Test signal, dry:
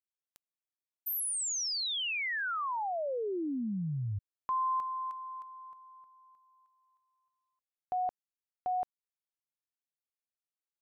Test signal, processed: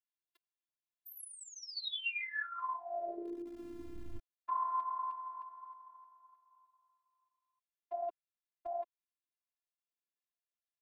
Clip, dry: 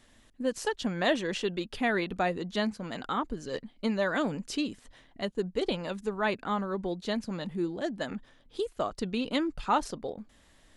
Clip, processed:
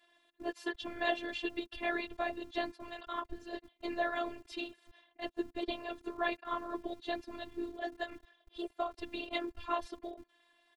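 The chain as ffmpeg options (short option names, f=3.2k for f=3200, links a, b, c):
-filter_complex "[0:a]highshelf=f=4.8k:t=q:w=1.5:g=-9,aecho=1:1:1.8:0.54,afftfilt=real='hypot(re,im)*cos(2*PI*random(0))':imag='hypot(re,im)*sin(2*PI*random(1))':win_size=512:overlap=0.75,acrossover=split=210[a][b];[a]aeval=exprs='val(0)*gte(abs(val(0)),0.00237)':c=same[c];[c][b]amix=inputs=2:normalize=0,afftfilt=real='hypot(re,im)*cos(PI*b)':imag='0':win_size=512:overlap=0.75,volume=2dB"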